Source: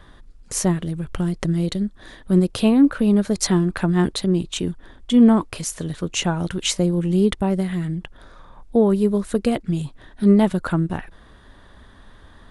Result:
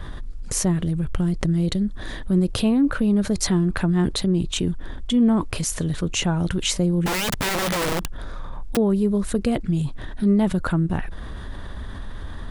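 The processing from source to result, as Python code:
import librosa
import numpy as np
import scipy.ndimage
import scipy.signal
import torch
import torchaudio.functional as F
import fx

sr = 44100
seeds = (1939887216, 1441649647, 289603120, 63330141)

y = fx.low_shelf(x, sr, hz=170.0, db=8.5)
y = fx.overflow_wrap(y, sr, gain_db=19.0, at=(7.06, 8.77))
y = fx.env_flatten(y, sr, amount_pct=50)
y = y * 10.0 ** (-8.5 / 20.0)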